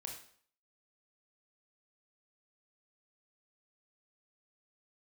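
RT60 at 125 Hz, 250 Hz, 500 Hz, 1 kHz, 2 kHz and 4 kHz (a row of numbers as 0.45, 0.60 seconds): 0.50, 0.55, 0.55, 0.55, 0.50, 0.50 seconds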